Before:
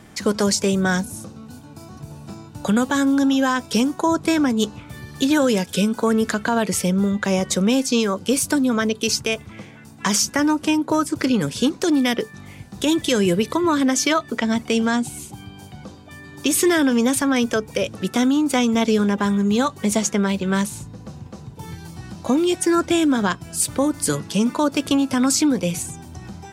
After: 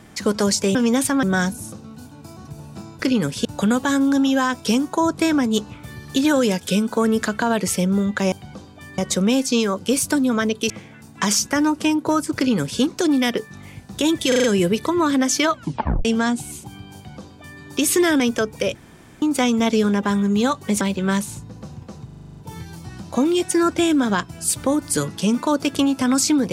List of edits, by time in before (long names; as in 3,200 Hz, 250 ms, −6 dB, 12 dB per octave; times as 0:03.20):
0:09.10–0:09.53: remove
0:11.18–0:11.64: duplicate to 0:02.51
0:13.11: stutter 0.04 s, 5 plays
0:14.18: tape stop 0.54 s
0:15.62–0:16.28: duplicate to 0:07.38
0:16.87–0:17.35: move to 0:00.75
0:17.90–0:18.37: fill with room tone
0:19.96–0:20.25: remove
0:21.49: stutter 0.04 s, 9 plays